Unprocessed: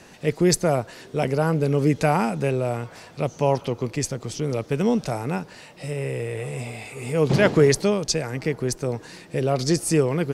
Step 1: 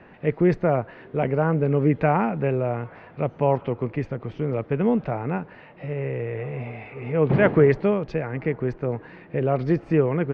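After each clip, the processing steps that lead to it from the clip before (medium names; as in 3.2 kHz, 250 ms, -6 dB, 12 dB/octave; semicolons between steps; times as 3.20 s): low-pass 2.3 kHz 24 dB/octave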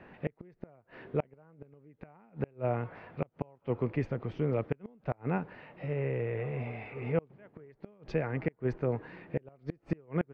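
inverted gate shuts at -13 dBFS, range -33 dB; trim -4.5 dB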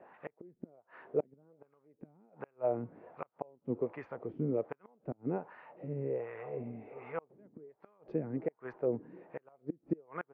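wah-wah 1.3 Hz 230–1200 Hz, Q 2.1; trim +3 dB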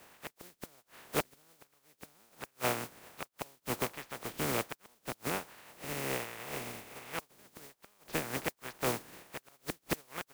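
spectral contrast reduction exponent 0.26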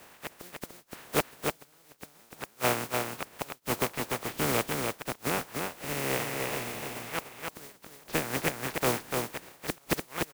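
delay 295 ms -4 dB; trim +5 dB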